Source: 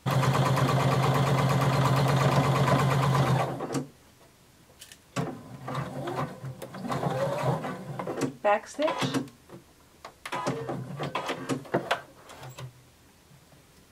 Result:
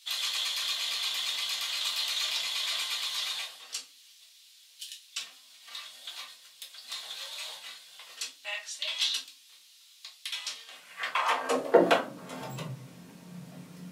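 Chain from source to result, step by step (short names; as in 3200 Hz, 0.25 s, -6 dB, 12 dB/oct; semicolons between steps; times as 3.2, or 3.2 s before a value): shoebox room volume 140 m³, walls furnished, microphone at 1.6 m; high-pass sweep 3600 Hz -> 170 Hz, 10.64–12.21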